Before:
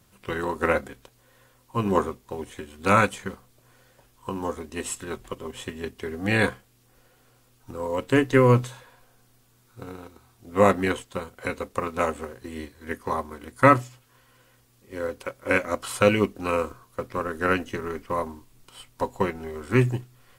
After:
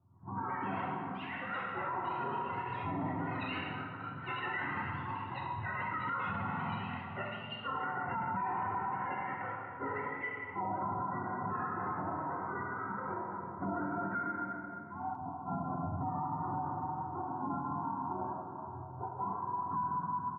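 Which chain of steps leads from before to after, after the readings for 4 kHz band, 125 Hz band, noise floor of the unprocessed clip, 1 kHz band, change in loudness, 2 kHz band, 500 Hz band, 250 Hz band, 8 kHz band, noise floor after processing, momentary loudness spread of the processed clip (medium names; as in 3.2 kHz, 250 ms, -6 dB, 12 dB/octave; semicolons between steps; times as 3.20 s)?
-11.5 dB, -12.5 dB, -61 dBFS, -5.0 dB, -12.0 dB, -11.0 dB, -19.0 dB, -12.0 dB, under -40 dB, -45 dBFS, 5 LU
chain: spectrum inverted on a logarithmic axis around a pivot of 620 Hz; in parallel at -3 dB: compression, threshold -37 dBFS, peak gain reduction 23 dB; on the sum: rippled Chebyshev low-pass 1.4 kHz, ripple 6 dB; hum notches 60/120/180/240/300 Hz; comb 1.1 ms, depth 46%; on a send: delay 789 ms -21 dB; on the sum: plate-style reverb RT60 3.2 s, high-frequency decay 1×, DRR -3.5 dB; dynamic bell 170 Hz, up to -4 dB, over -37 dBFS, Q 1.1; ever faster or slower copies 177 ms, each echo +6 st, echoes 3, each echo -6 dB; peaking EQ 360 Hz -10 dB 2.3 oct; peak limiter -23.5 dBFS, peak gain reduction 14.5 dB; trim -4.5 dB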